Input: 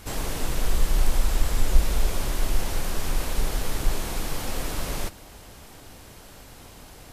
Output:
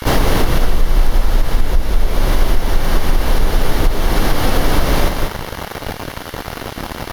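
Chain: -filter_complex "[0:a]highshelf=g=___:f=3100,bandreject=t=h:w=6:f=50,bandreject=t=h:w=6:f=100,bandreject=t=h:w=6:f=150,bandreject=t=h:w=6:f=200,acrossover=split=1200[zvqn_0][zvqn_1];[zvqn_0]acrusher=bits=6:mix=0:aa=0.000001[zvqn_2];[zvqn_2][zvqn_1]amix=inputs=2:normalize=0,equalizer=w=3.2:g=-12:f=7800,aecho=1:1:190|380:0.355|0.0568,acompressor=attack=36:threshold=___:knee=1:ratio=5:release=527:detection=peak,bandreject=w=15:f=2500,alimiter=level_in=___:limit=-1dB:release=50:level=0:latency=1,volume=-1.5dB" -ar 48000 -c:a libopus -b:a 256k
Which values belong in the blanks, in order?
-8, -28dB, 22dB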